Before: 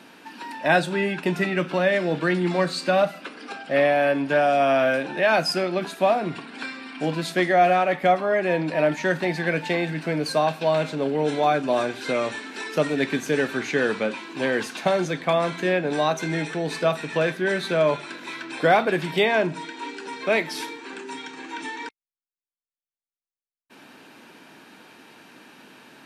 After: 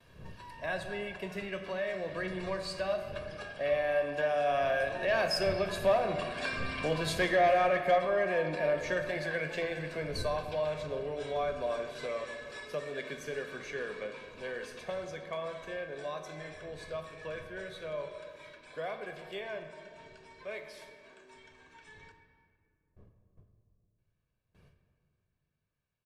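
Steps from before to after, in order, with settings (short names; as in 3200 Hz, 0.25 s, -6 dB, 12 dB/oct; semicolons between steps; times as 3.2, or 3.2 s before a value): wind noise 160 Hz -38 dBFS; Doppler pass-by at 6.83, 10 m/s, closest 12 m; low shelf 140 Hz -8.5 dB; gate with hold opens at -53 dBFS; comb 1.8 ms, depth 57%; in parallel at +2 dB: compressor, threshold -34 dBFS, peak gain reduction 18.5 dB; on the sum: soft clip -11.5 dBFS, distortion -20 dB; on a send at -6 dB: reverb RT60 2.2 s, pre-delay 4 ms; on the sum: gain -7.5 dB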